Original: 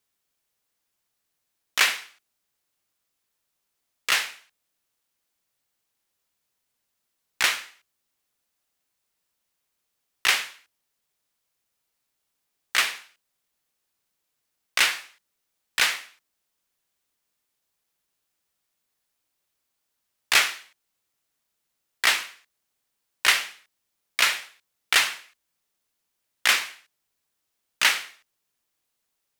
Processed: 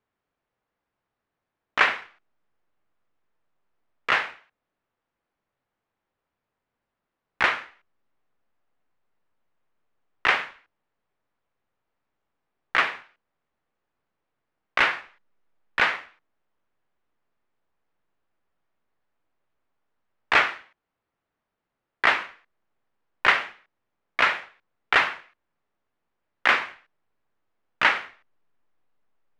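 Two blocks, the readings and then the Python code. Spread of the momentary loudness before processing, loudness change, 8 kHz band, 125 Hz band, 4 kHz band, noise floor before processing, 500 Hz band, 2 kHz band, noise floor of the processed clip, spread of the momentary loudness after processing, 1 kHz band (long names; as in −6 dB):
15 LU, −0.5 dB, below −15 dB, can't be measured, −7.0 dB, −79 dBFS, +7.5 dB, +1.5 dB, −84 dBFS, 15 LU, +6.0 dB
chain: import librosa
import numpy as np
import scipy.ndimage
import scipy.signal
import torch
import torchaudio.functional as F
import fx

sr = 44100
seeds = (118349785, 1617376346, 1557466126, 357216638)

p1 = scipy.signal.sosfilt(scipy.signal.butter(2, 1500.0, 'lowpass', fs=sr, output='sos'), x)
p2 = fx.backlash(p1, sr, play_db=-43.5)
p3 = p1 + F.gain(torch.from_numpy(p2), -11.0).numpy()
y = F.gain(torch.from_numpy(p3), 5.5).numpy()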